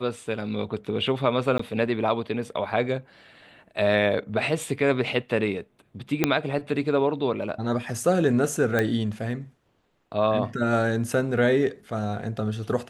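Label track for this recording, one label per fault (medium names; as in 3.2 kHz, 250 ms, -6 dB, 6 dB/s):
1.580000	1.590000	dropout 14 ms
6.240000	6.240000	pop -5 dBFS
8.790000	8.790000	pop -11 dBFS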